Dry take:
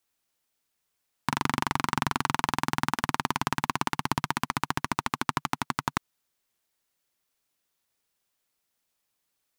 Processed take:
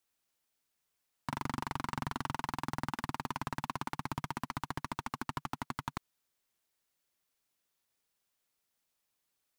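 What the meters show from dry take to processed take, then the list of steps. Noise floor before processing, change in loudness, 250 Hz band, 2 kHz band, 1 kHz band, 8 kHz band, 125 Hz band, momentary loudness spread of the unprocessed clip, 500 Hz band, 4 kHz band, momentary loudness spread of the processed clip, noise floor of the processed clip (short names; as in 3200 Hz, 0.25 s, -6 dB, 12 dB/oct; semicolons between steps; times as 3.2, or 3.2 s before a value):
-79 dBFS, -10.0 dB, -8.5 dB, -11.5 dB, -10.0 dB, -13.0 dB, -7.0 dB, 3 LU, -9.0 dB, -12.5 dB, 3 LU, -83 dBFS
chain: soft clip -22 dBFS, distortion -5 dB; gain -3.5 dB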